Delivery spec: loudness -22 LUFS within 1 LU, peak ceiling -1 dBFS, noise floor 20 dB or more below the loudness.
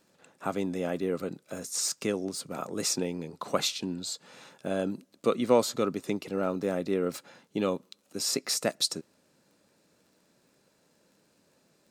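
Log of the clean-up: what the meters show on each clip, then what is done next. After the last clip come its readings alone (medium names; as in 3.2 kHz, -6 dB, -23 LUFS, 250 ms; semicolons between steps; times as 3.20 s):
tick rate 16 per s; loudness -31.0 LUFS; peak level -10.5 dBFS; loudness target -22.0 LUFS
-> de-click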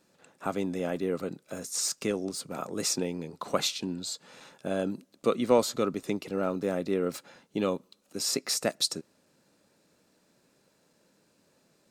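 tick rate 0.17 per s; loudness -31.0 LUFS; peak level -10.5 dBFS; loudness target -22.0 LUFS
-> trim +9 dB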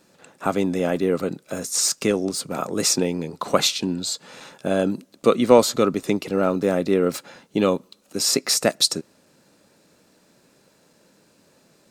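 loudness -22.0 LUFS; peak level -1.5 dBFS; noise floor -60 dBFS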